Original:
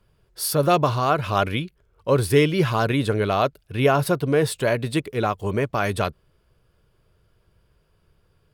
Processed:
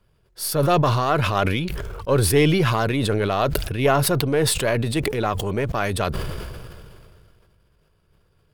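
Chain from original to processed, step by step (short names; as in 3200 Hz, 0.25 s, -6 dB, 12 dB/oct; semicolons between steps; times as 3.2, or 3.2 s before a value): half-wave gain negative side -3 dB; sustainer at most 25 dB/s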